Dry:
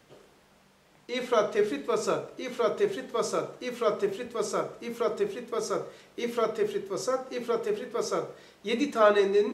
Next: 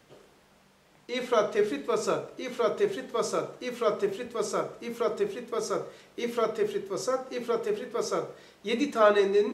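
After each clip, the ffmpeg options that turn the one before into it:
-af anull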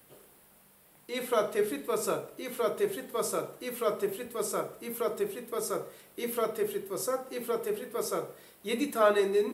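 -af "aexciter=amount=10.9:drive=3.6:freq=9k,volume=-3dB"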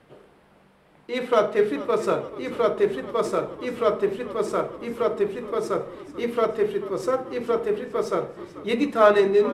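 -filter_complex "[0:a]adynamicsmooth=sensitivity=3:basefreq=3k,asplit=6[a][b][c][d][e][f];[b]adelay=437,afreqshift=-57,volume=-16.5dB[g];[c]adelay=874,afreqshift=-114,volume=-21.2dB[h];[d]adelay=1311,afreqshift=-171,volume=-26dB[i];[e]adelay=1748,afreqshift=-228,volume=-30.7dB[j];[f]adelay=2185,afreqshift=-285,volume=-35.4dB[k];[a][g][h][i][j][k]amix=inputs=6:normalize=0,volume=8dB"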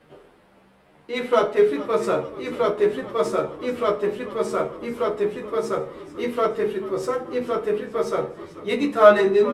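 -filter_complex "[0:a]asplit=2[a][b];[b]adelay=24,volume=-11dB[c];[a][c]amix=inputs=2:normalize=0,asplit=2[d][e];[e]adelay=10.4,afreqshift=0.85[f];[d][f]amix=inputs=2:normalize=1,volume=4dB"

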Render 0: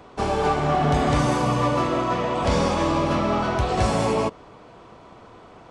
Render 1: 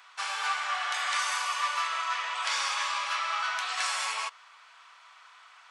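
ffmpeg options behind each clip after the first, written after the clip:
-af "highpass=f=1.3k:w=0.5412,highpass=f=1.3k:w=1.3066,volume=2dB"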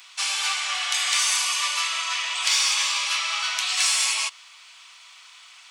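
-af "aexciter=amount=2.5:drive=9.1:freq=2.2k,volume=-1.5dB"

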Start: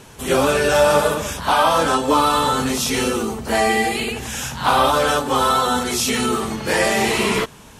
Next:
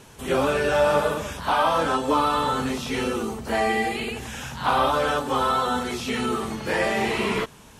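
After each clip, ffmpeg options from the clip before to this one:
-filter_complex "[0:a]acrossover=split=3600[a][b];[b]acompressor=threshold=-36dB:ratio=4:attack=1:release=60[c];[a][c]amix=inputs=2:normalize=0,volume=-5dB"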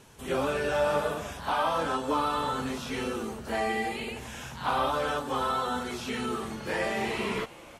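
-filter_complex "[0:a]asplit=5[a][b][c][d][e];[b]adelay=318,afreqshift=120,volume=-20dB[f];[c]adelay=636,afreqshift=240,volume=-25dB[g];[d]adelay=954,afreqshift=360,volume=-30.1dB[h];[e]adelay=1272,afreqshift=480,volume=-35.1dB[i];[a][f][g][h][i]amix=inputs=5:normalize=0,volume=-6.5dB"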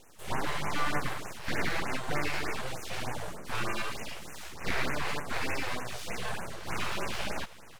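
-af "aeval=exprs='abs(val(0))':c=same,afftfilt=real='re*(1-between(b*sr/1024,210*pow(4200/210,0.5+0.5*sin(2*PI*3.3*pts/sr))/1.41,210*pow(4200/210,0.5+0.5*sin(2*PI*3.3*pts/sr))*1.41))':imag='im*(1-between(b*sr/1024,210*pow(4200/210,0.5+0.5*sin(2*PI*3.3*pts/sr))/1.41,210*pow(4200/210,0.5+0.5*sin(2*PI*3.3*pts/sr))*1.41))':win_size=1024:overlap=0.75"

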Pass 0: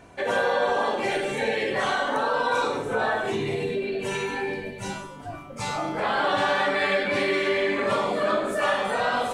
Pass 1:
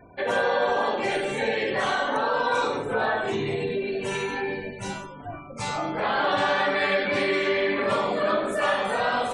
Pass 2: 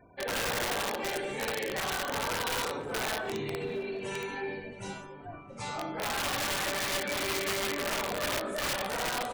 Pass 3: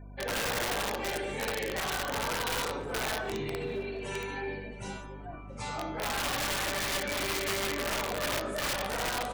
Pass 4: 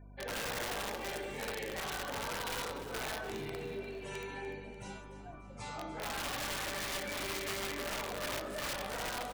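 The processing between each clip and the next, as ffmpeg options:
-af "afftfilt=real='re*gte(hypot(re,im),0.00501)':imag='im*gte(hypot(re,im),0.00501)':win_size=1024:overlap=0.75"
-filter_complex "[0:a]aeval=exprs='(mod(7.94*val(0)+1,2)-1)/7.94':c=same,asplit=2[a][b];[b]adelay=671,lowpass=f=1.8k:p=1,volume=-16.5dB,asplit=2[c][d];[d]adelay=671,lowpass=f=1.8k:p=1,volume=0.48,asplit=2[e][f];[f]adelay=671,lowpass=f=1.8k:p=1,volume=0.48,asplit=2[g][h];[h]adelay=671,lowpass=f=1.8k:p=1,volume=0.48[i];[a][c][e][g][i]amix=inputs=5:normalize=0,volume=-7.5dB"
-af "bandreject=f=191.7:t=h:w=4,bandreject=f=383.4:t=h:w=4,bandreject=f=575.1:t=h:w=4,bandreject=f=766.8:t=h:w=4,bandreject=f=958.5:t=h:w=4,bandreject=f=1.1502k:t=h:w=4,bandreject=f=1.3419k:t=h:w=4,bandreject=f=1.5336k:t=h:w=4,bandreject=f=1.7253k:t=h:w=4,bandreject=f=1.917k:t=h:w=4,bandreject=f=2.1087k:t=h:w=4,bandreject=f=2.3004k:t=h:w=4,bandreject=f=2.4921k:t=h:w=4,bandreject=f=2.6838k:t=h:w=4,bandreject=f=2.8755k:t=h:w=4,bandreject=f=3.0672k:t=h:w=4,bandreject=f=3.2589k:t=h:w=4,bandreject=f=3.4506k:t=h:w=4,bandreject=f=3.6423k:t=h:w=4,bandreject=f=3.834k:t=h:w=4,bandreject=f=4.0257k:t=h:w=4,bandreject=f=4.2174k:t=h:w=4,bandreject=f=4.4091k:t=h:w=4,bandreject=f=4.6008k:t=h:w=4,bandreject=f=4.7925k:t=h:w=4,bandreject=f=4.9842k:t=h:w=4,bandreject=f=5.1759k:t=h:w=4,bandreject=f=5.3676k:t=h:w=4,bandreject=f=5.5593k:t=h:w=4,bandreject=f=5.751k:t=h:w=4,bandreject=f=5.9427k:t=h:w=4,bandreject=f=6.1344k:t=h:w=4,bandreject=f=6.3261k:t=h:w=4,bandreject=f=6.5178k:t=h:w=4,bandreject=f=6.7095k:t=h:w=4,bandreject=f=6.9012k:t=h:w=4,aeval=exprs='val(0)+0.00562*(sin(2*PI*50*n/s)+sin(2*PI*2*50*n/s)/2+sin(2*PI*3*50*n/s)/3+sin(2*PI*4*50*n/s)/4+sin(2*PI*5*50*n/s)/5)':c=same"
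-af "aecho=1:1:295|590|885|1180:0.211|0.0972|0.0447|0.0206,volume=-6.5dB"

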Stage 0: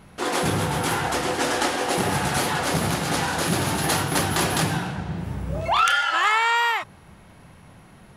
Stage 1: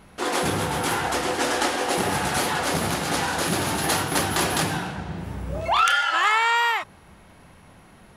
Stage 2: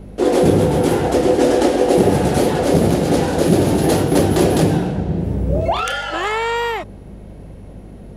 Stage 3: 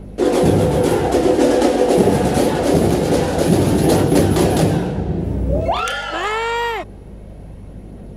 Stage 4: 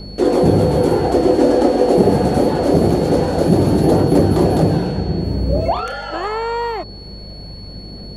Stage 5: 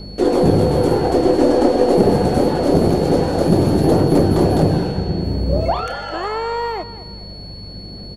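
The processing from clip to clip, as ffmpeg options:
-af "equalizer=f=130:t=o:w=0.99:g=-5.5"
-af "aeval=exprs='val(0)+0.00355*(sin(2*PI*50*n/s)+sin(2*PI*2*50*n/s)/2+sin(2*PI*3*50*n/s)/3+sin(2*PI*4*50*n/s)/4+sin(2*PI*5*50*n/s)/5)':c=same,lowshelf=f=740:t=q:w=1.5:g=13,volume=-1dB"
-af "aphaser=in_gain=1:out_gain=1:delay=4.7:decay=0.21:speed=0.25:type=triangular"
-filter_complex "[0:a]acrossover=split=1300[a][b];[b]acompressor=threshold=-37dB:ratio=6[c];[a][c]amix=inputs=2:normalize=0,aeval=exprs='val(0)+0.0126*sin(2*PI*4400*n/s)':c=same,volume=1dB"
-af "aeval=exprs='0.891*(cos(1*acos(clip(val(0)/0.891,-1,1)))-cos(1*PI/2))+0.0501*(cos(4*acos(clip(val(0)/0.891,-1,1)))-cos(4*PI/2))':c=same,aecho=1:1:210|420|630:0.178|0.0605|0.0206,volume=-1dB"

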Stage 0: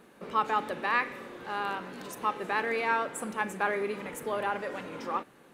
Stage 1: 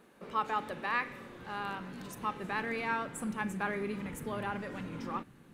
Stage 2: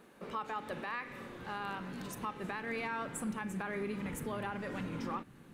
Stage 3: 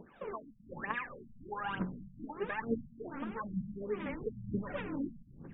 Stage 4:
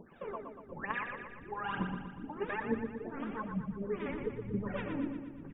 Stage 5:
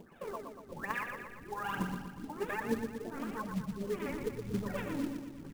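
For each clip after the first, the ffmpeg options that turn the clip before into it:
-af "asubboost=boost=7.5:cutoff=190,volume=-4.5dB"
-af "alimiter=level_in=6dB:limit=-24dB:level=0:latency=1:release=208,volume=-6dB,volume=1.5dB"
-af "aphaser=in_gain=1:out_gain=1:delay=3.7:decay=0.77:speed=1.1:type=triangular,afftfilt=real='re*lt(b*sr/1024,210*pow(3800/210,0.5+0.5*sin(2*PI*1.3*pts/sr)))':imag='im*lt(b*sr/1024,210*pow(3800/210,0.5+0.5*sin(2*PI*1.3*pts/sr)))':win_size=1024:overlap=0.75,volume=-1dB"
-af "aecho=1:1:119|238|357|476|595|714|833|952:0.473|0.274|0.159|0.0923|0.0535|0.0311|0.018|0.0104"
-af "acrusher=bits=4:mode=log:mix=0:aa=0.000001"

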